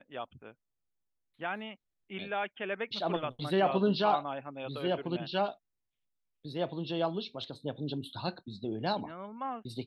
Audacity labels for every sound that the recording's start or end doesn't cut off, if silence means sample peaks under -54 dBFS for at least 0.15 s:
1.390000	1.750000	sound
2.100000	5.550000	sound